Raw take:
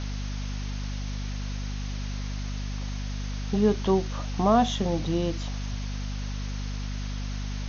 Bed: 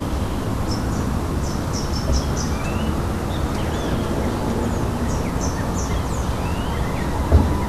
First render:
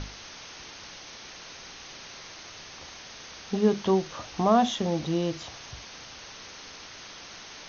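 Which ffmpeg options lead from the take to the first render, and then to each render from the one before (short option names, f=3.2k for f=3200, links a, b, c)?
-af "bandreject=f=50:t=h:w=6,bandreject=f=100:t=h:w=6,bandreject=f=150:t=h:w=6,bandreject=f=200:t=h:w=6,bandreject=f=250:t=h:w=6"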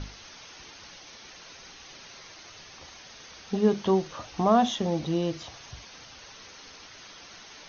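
-af "afftdn=nr=6:nf=-45"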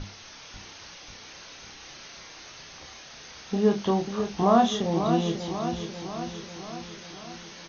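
-filter_complex "[0:a]asplit=2[a][b];[b]adelay=30,volume=-5dB[c];[a][c]amix=inputs=2:normalize=0,aecho=1:1:542|1084|1626|2168|2710|3252|3794:0.398|0.235|0.139|0.0818|0.0482|0.0285|0.0168"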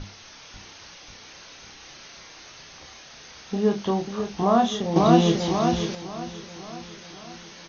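-filter_complex "[0:a]asplit=3[a][b][c];[a]atrim=end=4.962[d];[b]atrim=start=4.958:end=5.952,asetpts=PTS-STARTPTS,volume=7.5dB[e];[c]atrim=start=5.948[f];[d][e]acrossfade=d=0.004:c1=hsin:c2=hsin[g];[g][f]acrossfade=d=0.004:c1=hsin:c2=hsin"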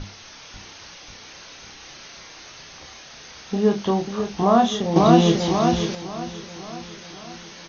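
-af "volume=3dB,alimiter=limit=-2dB:level=0:latency=1"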